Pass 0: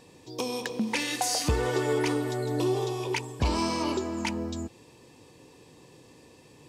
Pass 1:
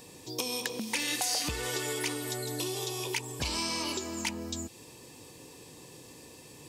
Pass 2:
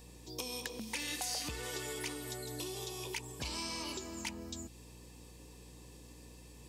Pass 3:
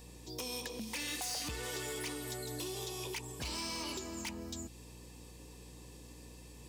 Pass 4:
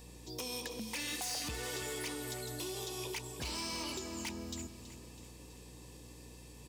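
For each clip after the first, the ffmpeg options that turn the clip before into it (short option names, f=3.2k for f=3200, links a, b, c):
-filter_complex "[0:a]acrossover=split=1900|4000[a][b][c];[a]acompressor=threshold=-38dB:ratio=4[d];[b]acompressor=threshold=-38dB:ratio=4[e];[c]acompressor=threshold=-45dB:ratio=4[f];[d][e][f]amix=inputs=3:normalize=0,aemphasis=mode=production:type=50kf,volume=1.5dB"
-af "aeval=exprs='val(0)+0.00447*(sin(2*PI*60*n/s)+sin(2*PI*2*60*n/s)/2+sin(2*PI*3*60*n/s)/3+sin(2*PI*4*60*n/s)/4+sin(2*PI*5*60*n/s)/5)':c=same,volume=-7.5dB"
-af "asoftclip=type=hard:threshold=-36.5dB,volume=1.5dB"
-af "aecho=1:1:326|652|978|1304|1630:0.211|0.112|0.0594|0.0315|0.0167"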